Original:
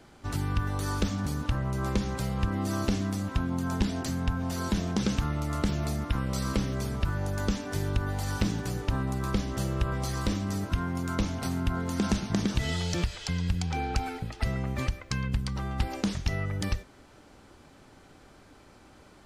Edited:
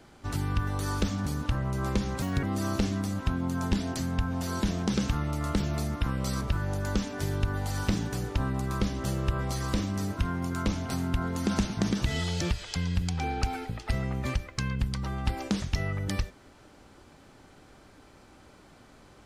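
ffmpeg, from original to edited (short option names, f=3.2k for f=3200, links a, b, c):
-filter_complex "[0:a]asplit=4[a][b][c][d];[a]atrim=end=2.224[e];[b]atrim=start=2.22:end=2.52,asetpts=PTS-STARTPTS,asetrate=62622,aresample=44100[f];[c]atrim=start=2.516:end=6.502[g];[d]atrim=start=6.938[h];[e][f]acrossfade=d=0.004:c1=hsin:c2=hsin[i];[i][g]acrossfade=d=0.004:c1=hsin:c2=hsin[j];[j][h]acrossfade=d=0.004:c1=hsin:c2=hsin"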